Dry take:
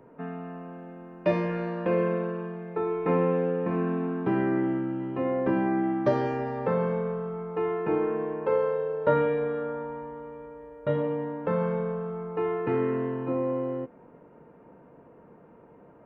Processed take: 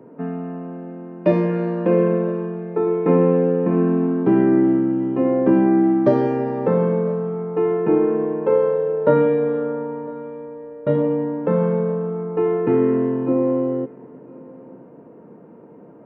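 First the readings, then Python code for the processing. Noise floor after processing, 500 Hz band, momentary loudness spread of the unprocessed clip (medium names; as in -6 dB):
-44 dBFS, +8.5 dB, 13 LU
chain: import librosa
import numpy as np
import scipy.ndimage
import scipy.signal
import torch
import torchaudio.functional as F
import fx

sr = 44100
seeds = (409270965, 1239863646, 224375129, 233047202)

p1 = scipy.signal.sosfilt(scipy.signal.butter(2, 97.0, 'highpass', fs=sr, output='sos'), x)
p2 = fx.peak_eq(p1, sr, hz=270.0, db=11.5, octaves=2.6)
y = p2 + fx.echo_single(p2, sr, ms=1005, db=-24.0, dry=0)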